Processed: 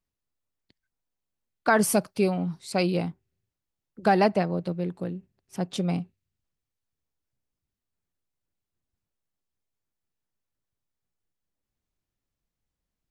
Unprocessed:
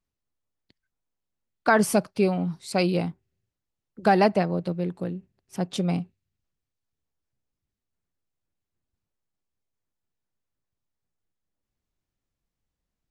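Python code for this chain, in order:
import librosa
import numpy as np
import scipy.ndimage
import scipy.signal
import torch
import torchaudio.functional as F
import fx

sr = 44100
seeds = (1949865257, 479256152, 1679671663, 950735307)

y = fx.high_shelf(x, sr, hz=fx.line((1.71, 10000.0), (2.29, 7200.0)), db=9.5, at=(1.71, 2.29), fade=0.02)
y = y * 10.0 ** (-1.5 / 20.0)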